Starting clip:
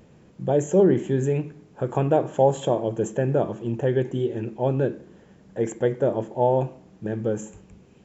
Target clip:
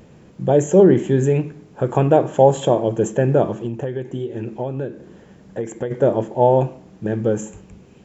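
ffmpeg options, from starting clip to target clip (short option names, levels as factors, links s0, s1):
-filter_complex "[0:a]asplit=3[s0][s1][s2];[s0]afade=t=out:st=3.65:d=0.02[s3];[s1]acompressor=threshold=0.0398:ratio=10,afade=t=in:st=3.65:d=0.02,afade=t=out:st=5.9:d=0.02[s4];[s2]afade=t=in:st=5.9:d=0.02[s5];[s3][s4][s5]amix=inputs=3:normalize=0,volume=2"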